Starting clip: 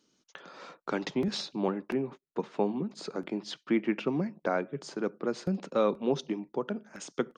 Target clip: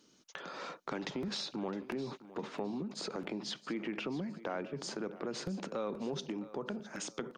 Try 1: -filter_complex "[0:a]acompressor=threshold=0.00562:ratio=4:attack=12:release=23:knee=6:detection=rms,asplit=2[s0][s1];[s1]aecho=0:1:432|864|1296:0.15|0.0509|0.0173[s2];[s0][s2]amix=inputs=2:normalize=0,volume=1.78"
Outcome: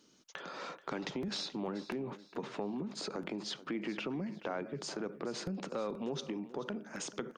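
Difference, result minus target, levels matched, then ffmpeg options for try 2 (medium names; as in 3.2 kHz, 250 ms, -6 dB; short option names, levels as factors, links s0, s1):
echo 230 ms early
-filter_complex "[0:a]acompressor=threshold=0.00562:ratio=4:attack=12:release=23:knee=6:detection=rms,asplit=2[s0][s1];[s1]aecho=0:1:662|1324|1986:0.15|0.0509|0.0173[s2];[s0][s2]amix=inputs=2:normalize=0,volume=1.78"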